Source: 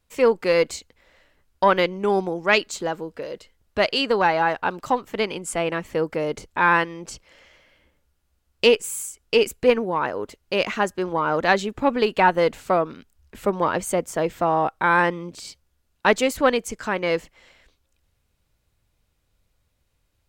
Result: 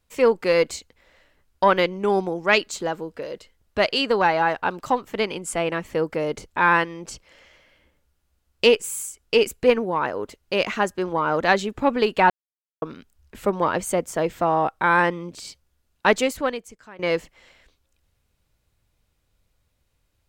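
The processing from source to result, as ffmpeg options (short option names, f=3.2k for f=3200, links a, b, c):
-filter_complex "[0:a]asplit=4[a][b][c][d];[a]atrim=end=12.3,asetpts=PTS-STARTPTS,afade=t=out:st=12.296:d=0.004:c=hsin[e];[b]atrim=start=12.3:end=12.82,asetpts=PTS-STARTPTS,volume=0[f];[c]atrim=start=12.82:end=16.99,asetpts=PTS-STARTPTS,afade=t=in:d=0.004:c=hsin,afade=t=out:st=3.38:d=0.79:c=qua:silence=0.105925[g];[d]atrim=start=16.99,asetpts=PTS-STARTPTS,afade=t=in:d=0.004:c=hsin:silence=0.105925[h];[e][f][g][h]concat=n=4:v=0:a=1"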